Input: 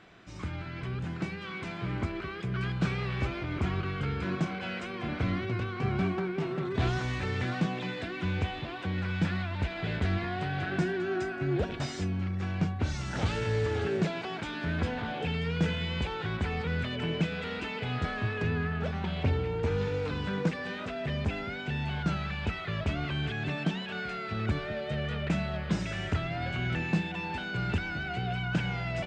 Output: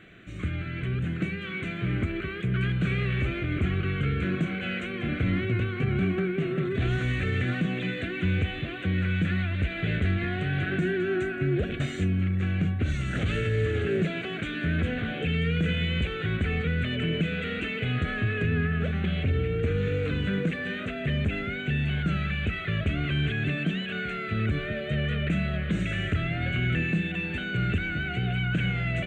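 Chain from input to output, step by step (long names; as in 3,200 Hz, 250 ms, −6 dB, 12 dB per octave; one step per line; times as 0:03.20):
brickwall limiter −23 dBFS, peak gain reduction 7 dB
phaser with its sweep stopped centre 2,200 Hz, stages 4
level +6.5 dB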